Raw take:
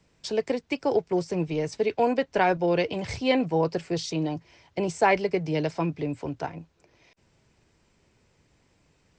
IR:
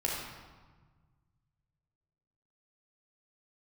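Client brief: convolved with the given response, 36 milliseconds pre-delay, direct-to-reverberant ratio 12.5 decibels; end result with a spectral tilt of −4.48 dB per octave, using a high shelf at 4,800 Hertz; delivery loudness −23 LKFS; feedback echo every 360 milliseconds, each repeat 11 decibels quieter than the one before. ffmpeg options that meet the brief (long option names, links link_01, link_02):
-filter_complex "[0:a]highshelf=frequency=4800:gain=4,aecho=1:1:360|720|1080:0.282|0.0789|0.0221,asplit=2[link_01][link_02];[1:a]atrim=start_sample=2205,adelay=36[link_03];[link_02][link_03]afir=irnorm=-1:irlink=0,volume=-19dB[link_04];[link_01][link_04]amix=inputs=2:normalize=0,volume=3dB"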